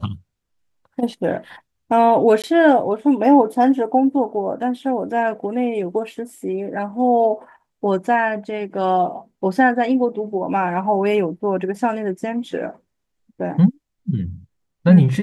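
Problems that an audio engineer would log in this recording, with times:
2.42–2.44 s: dropout 17 ms

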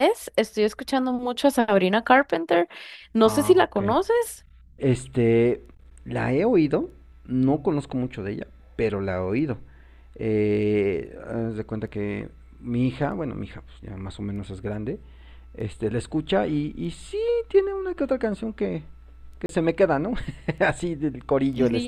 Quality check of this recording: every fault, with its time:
19.46–19.49 s: dropout 32 ms

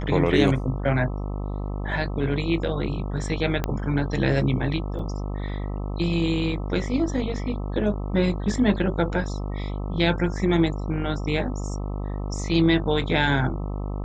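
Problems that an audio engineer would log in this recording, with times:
buzz 50 Hz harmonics 26 -29 dBFS
3.64 s: pop -11 dBFS
4.99 s: dropout 2.7 ms

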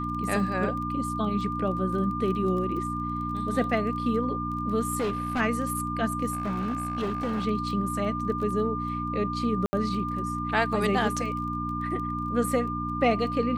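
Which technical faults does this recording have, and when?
crackle 17 per s -35 dBFS
hum 60 Hz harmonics 5 -33 dBFS
whine 1.2 kHz -31 dBFS
4.98–5.41 s: clipped -23.5 dBFS
6.31–7.46 s: clipped -25 dBFS
9.66–9.73 s: dropout 70 ms

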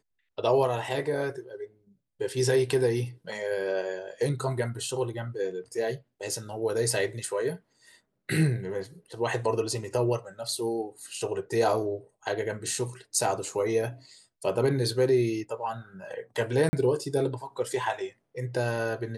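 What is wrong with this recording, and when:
16.69–16.73 s: dropout 40 ms

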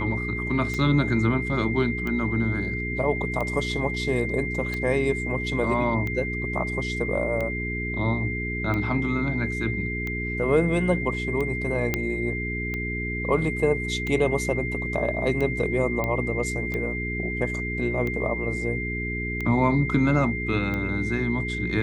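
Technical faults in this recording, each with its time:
hum 60 Hz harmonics 7 -31 dBFS
tick 45 rpm -18 dBFS
whine 2.1 kHz -30 dBFS
11.94 s: pop -9 dBFS
16.04 s: pop -14 dBFS

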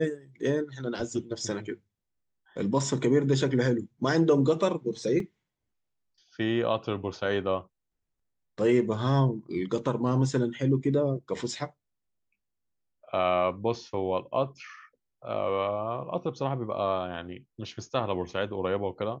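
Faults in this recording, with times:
5.20 s: dropout 2.5 ms

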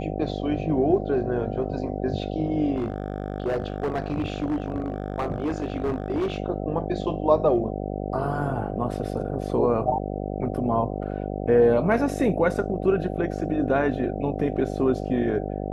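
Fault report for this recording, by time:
buzz 50 Hz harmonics 15 -30 dBFS
2.76–6.38 s: clipped -21.5 dBFS

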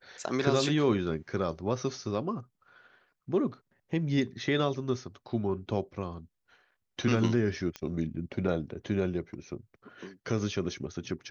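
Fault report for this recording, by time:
7.76 s: pop -22 dBFS

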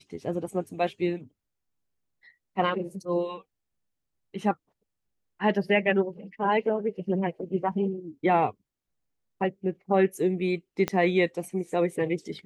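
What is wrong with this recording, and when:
10.88 s: pop -13 dBFS

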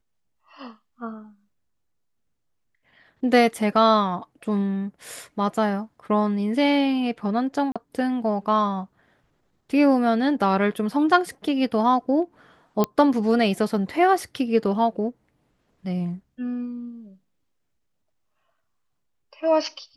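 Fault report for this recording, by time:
7.72–7.76 s: dropout 36 ms
12.84 s: pop -9 dBFS

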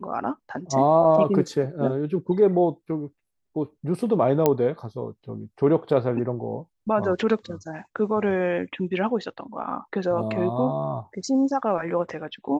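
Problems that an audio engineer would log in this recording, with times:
4.46 s: pop -6 dBFS

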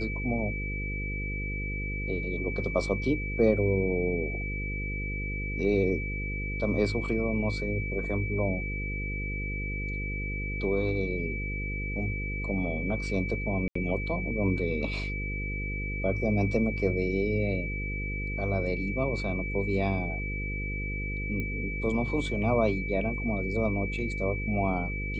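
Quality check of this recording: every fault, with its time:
buzz 50 Hz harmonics 10 -34 dBFS
whine 2.3 kHz -35 dBFS
13.68–13.75 s: dropout 74 ms
21.40 s: pop -22 dBFS

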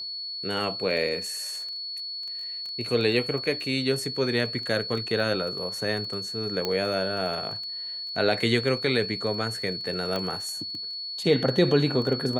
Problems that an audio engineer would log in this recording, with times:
crackle 11 per s -32 dBFS
whine 4.4 kHz -32 dBFS
6.65 s: pop -13 dBFS
10.16 s: pop -16 dBFS

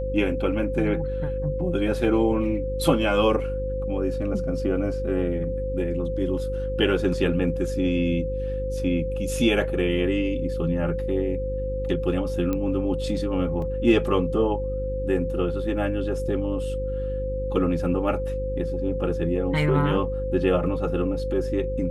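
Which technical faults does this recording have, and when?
buzz 50 Hz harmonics 9 -30 dBFS
whine 520 Hz -28 dBFS
12.53 s: pop -14 dBFS
13.62 s: dropout 2.2 ms

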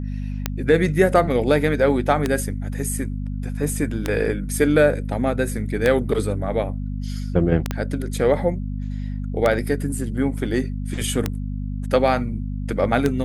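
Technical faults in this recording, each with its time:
hum 50 Hz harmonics 5 -27 dBFS
tick 33 1/3 rpm -6 dBFS
7.71 s: pop -10 dBFS

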